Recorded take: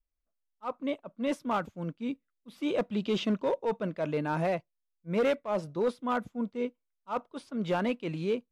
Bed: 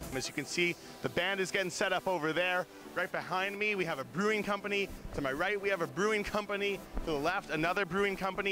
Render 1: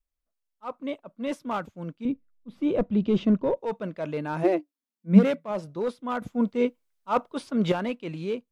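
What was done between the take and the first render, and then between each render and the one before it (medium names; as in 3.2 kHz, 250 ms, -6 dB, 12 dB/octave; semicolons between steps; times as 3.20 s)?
2.05–3.57 s: tilt EQ -3.5 dB/octave; 4.43–5.51 s: resonant high-pass 350 Hz -> 150 Hz, resonance Q 15; 6.22–7.72 s: gain +8.5 dB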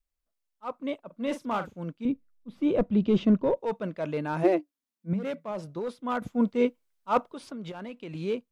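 1.06–1.80 s: doubling 43 ms -10 dB; 5.13–5.96 s: compression 5:1, threshold -29 dBFS; 7.30–8.15 s: compression 10:1, threshold -35 dBFS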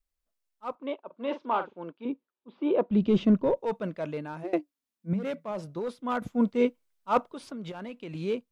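0.75–2.91 s: cabinet simulation 350–3700 Hz, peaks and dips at 380 Hz +7 dB, 930 Hz +7 dB, 2 kHz -5 dB; 3.92–4.53 s: fade out, to -20.5 dB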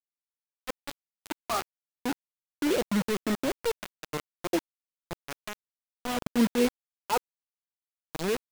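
phase shifter stages 12, 0.51 Hz, lowest notch 150–2300 Hz; bit crusher 5-bit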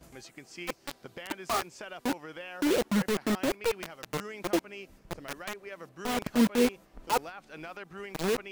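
add bed -11.5 dB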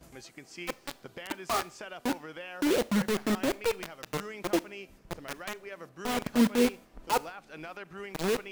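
Schroeder reverb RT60 0.48 s, combs from 26 ms, DRR 20 dB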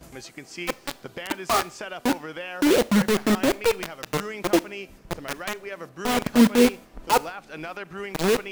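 trim +7.5 dB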